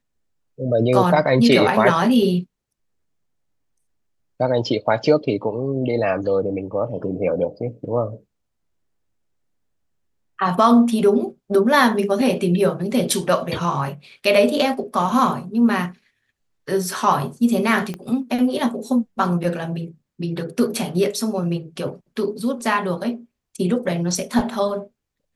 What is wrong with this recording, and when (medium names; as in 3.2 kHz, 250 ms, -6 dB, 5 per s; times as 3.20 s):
17.94 s: pop -17 dBFS